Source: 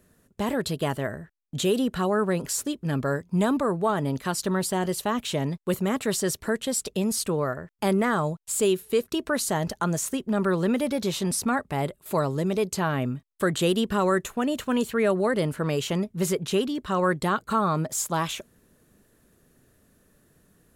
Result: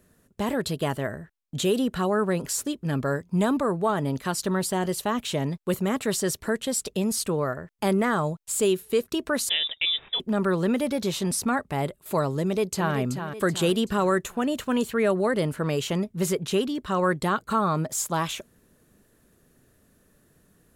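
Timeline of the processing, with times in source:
9.49–10.20 s: frequency inversion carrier 3.7 kHz
12.41–12.95 s: echo throw 380 ms, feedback 45%, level -8 dB

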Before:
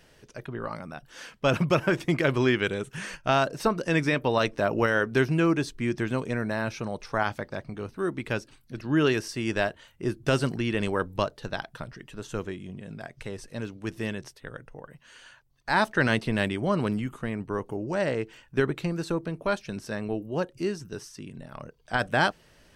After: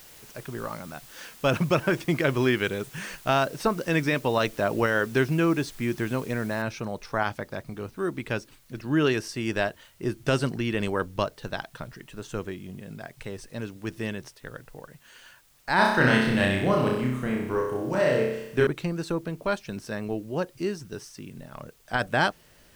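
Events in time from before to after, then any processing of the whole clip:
6.62 s: noise floor step -50 dB -62 dB
15.75–18.67 s: flutter echo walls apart 5.4 m, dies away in 0.79 s

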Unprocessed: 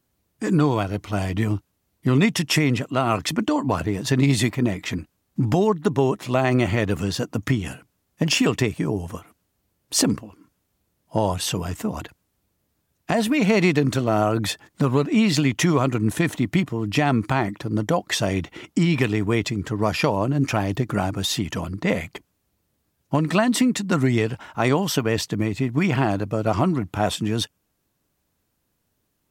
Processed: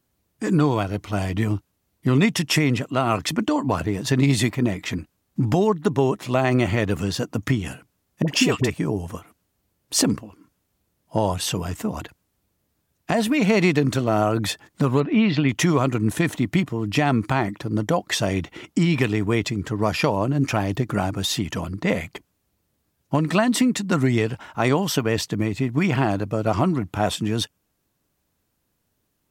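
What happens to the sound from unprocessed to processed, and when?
8.22–8.70 s: phase dispersion highs, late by 58 ms, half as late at 690 Hz
15.00–15.49 s: low-pass 3.5 kHz 24 dB/octave

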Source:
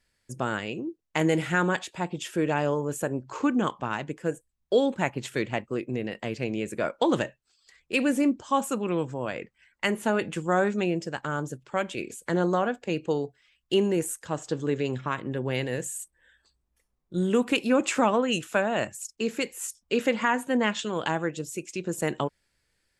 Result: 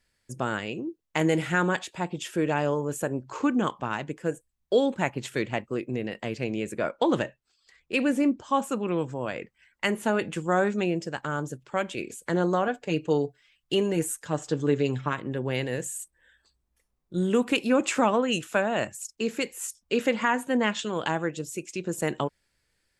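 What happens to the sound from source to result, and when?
6.73–9.01 s: treble shelf 6.3 kHz -7.5 dB
12.67–15.13 s: comb 6.8 ms, depth 53%

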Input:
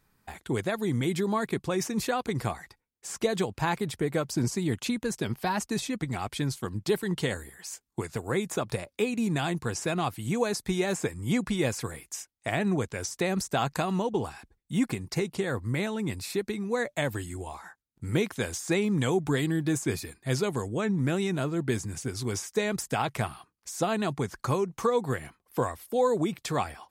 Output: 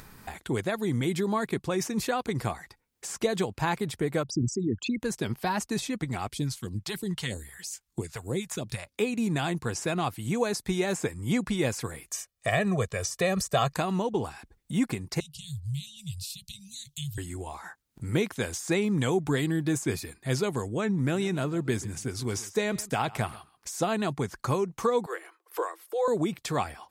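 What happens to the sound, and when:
4.23–5.00 s: resonances exaggerated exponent 3
6.31–8.92 s: phase shifter stages 2, 3.1 Hz, lowest notch 250–1600 Hz
12.08–13.76 s: comb 1.7 ms, depth 85%
15.20–17.18 s: Chebyshev band-stop 150–2900 Hz, order 5
21.01–23.84 s: delay 135 ms -19.5 dB
25.06–26.08 s: rippled Chebyshev high-pass 320 Hz, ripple 6 dB
whole clip: upward compressor, threshold -34 dBFS

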